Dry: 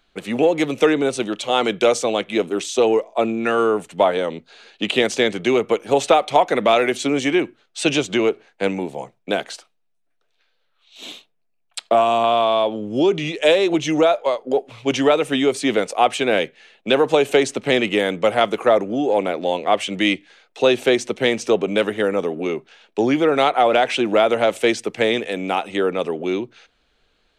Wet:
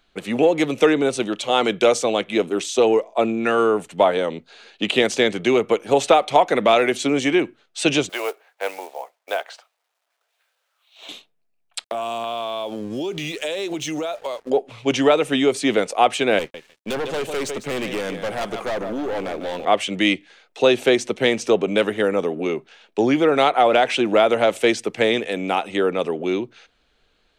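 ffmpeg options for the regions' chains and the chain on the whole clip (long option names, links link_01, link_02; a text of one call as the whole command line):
ffmpeg -i in.wav -filter_complex "[0:a]asettb=1/sr,asplit=3[link_01][link_02][link_03];[link_01]atrim=end=8.094[link_04];[link_02]atrim=start=8.09:end=11.09,asetpts=PTS-STARTPTS,afade=type=in:duration=0.004:curve=qsin,afade=type=out:start_time=2.996:duration=0.004:curve=qsin,aemphasis=mode=reproduction:type=riaa,acrusher=bits=7:mode=log:mix=0:aa=0.000001,highpass=frequency=620:width=0.5412,highpass=frequency=620:width=1.3066[link_05];[link_03]atrim=start=11.086[link_06];[link_04][link_05]acrossfade=duration=0.004:curve1=hsin:curve2=qsin[link_07];[link_07][link_06]acrossfade=duration=0.004:curve1=qsin:curve2=hsin,asettb=1/sr,asplit=3[link_08][link_09][link_10];[link_08]atrim=end=11.844[link_11];[link_09]atrim=start=11.84:end=14.5,asetpts=PTS-STARTPTS,afade=type=in:duration=0.004:curve=qsin,afade=type=out:start_time=2.656:duration=0.004:curve=qsin,aeval=exprs='sgn(val(0))*max(abs(val(0))-0.00501,0)':channel_layout=same,highshelf=frequency=4700:gain=11.5,acompressor=threshold=-24dB:ratio=5:attack=3.2:release=140:knee=1:detection=peak[link_12];[link_10]atrim=start=14.496[link_13];[link_11][link_12]acrossfade=duration=0.004:curve1=hsin:curve2=qsin[link_14];[link_14][link_13]acrossfade=duration=0.004:curve1=qsin:curve2=hsin,asettb=1/sr,asplit=3[link_15][link_16][link_17];[link_15]atrim=end=16.394[link_18];[link_16]atrim=start=16.39:end=19.65,asetpts=PTS-STARTPTS,afade=type=in:duration=0.004:curve=qsin,afade=type=out:start_time=3.256:duration=0.004:curve=qsin,aecho=1:1:151|302:0.237|0.0403,atrim=end_sample=143766,aeval=exprs='(tanh(12.6*val(0)+0.3)-tanh(0.3))/12.6':channel_layout=same,aeval=exprs='sgn(val(0))*max(abs(val(0))-0.00376,0)':channel_layout=same[link_19];[link_17]atrim=start=19.646[link_20];[link_18][link_19]acrossfade=duration=0.004:curve1=hsin:curve2=qsin[link_21];[link_21][link_20]acrossfade=duration=0.004:curve1=qsin:curve2=hsin" out.wav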